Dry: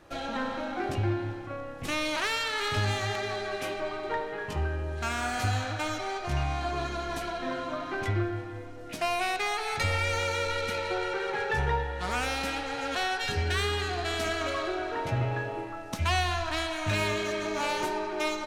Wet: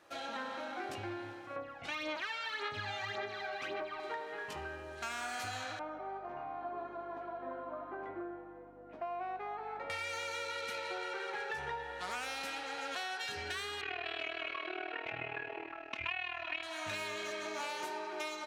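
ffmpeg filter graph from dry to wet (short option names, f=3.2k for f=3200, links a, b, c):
-filter_complex "[0:a]asettb=1/sr,asplit=3[a][b][c];[a]atrim=end=1.564[d];[b]atrim=start=1.56:end=4,asetpts=PTS-STARTPTS,afade=t=in:d=0.004:c=qsin,afade=t=out:st=2.436:d=0.004:c=qsin,lowpass=3.7k,aphaser=in_gain=1:out_gain=1:delay=1.4:decay=0.61:speed=1.8:type=sinusoidal[e];[c]atrim=start=3.996[f];[d][e]acrossfade=d=0.004:c1=hsin:c2=qsin[g];[g][f]acrossfade=d=0.004:c1=qsin:c2=hsin,asettb=1/sr,asplit=3[h][i][j];[h]atrim=end=5.794[k];[i]atrim=start=5.79:end=9.9,asetpts=PTS-STARTPTS,afade=t=in:d=0.004:c=qsin,afade=t=out:st=4.106:d=0.004:c=qsin,asuperpass=centerf=510:order=4:qfactor=0.62,aeval=exprs='val(0)+0.00708*(sin(2*PI*50*n/s)+sin(2*PI*2*50*n/s)/2+sin(2*PI*3*50*n/s)/3+sin(2*PI*4*50*n/s)/4+sin(2*PI*5*50*n/s)/5)':c=same[l];[j]atrim=start=9.896[m];[k][l]acrossfade=d=0.004:c1=hsin:c2=qsin[n];[n][m]acrossfade=d=0.004:c1=qsin:c2=hsin,asettb=1/sr,asplit=3[o][p][q];[o]atrim=end=13.814[r];[p]atrim=start=13.81:end=16.63,asetpts=PTS-STARTPTS,afade=t=in:d=0.004:c=qsin,afade=t=out:st=2.816:d=0.004:c=qsin,lowpass=f=2.5k:t=q:w=5.6,aecho=1:1:2.8:0.73,atrim=end_sample=124362,tremolo=f=39:d=0.824[s];[q]atrim=start=16.626[t];[r][s]acrossfade=d=0.004:c1=hsin:c2=qsin[u];[u][t]acrossfade=d=0.004:c1=qsin:c2=hsin,highpass=f=630:p=1,acompressor=threshold=-32dB:ratio=6,volume=-4dB"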